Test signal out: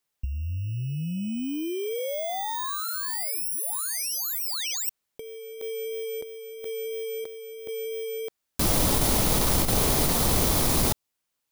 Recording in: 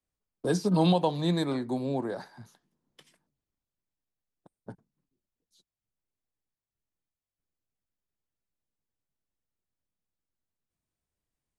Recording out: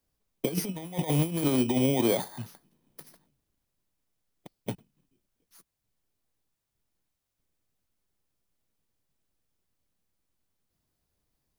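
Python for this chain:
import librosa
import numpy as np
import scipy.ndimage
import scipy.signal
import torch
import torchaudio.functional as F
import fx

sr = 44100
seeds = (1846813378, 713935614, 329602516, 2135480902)

y = fx.bit_reversed(x, sr, seeds[0], block=16)
y = fx.over_compress(y, sr, threshold_db=-31.0, ratio=-0.5)
y = fx.dynamic_eq(y, sr, hz=1600.0, q=2.7, threshold_db=-54.0, ratio=4.0, max_db=-6)
y = F.gain(torch.from_numpy(y), 5.0).numpy()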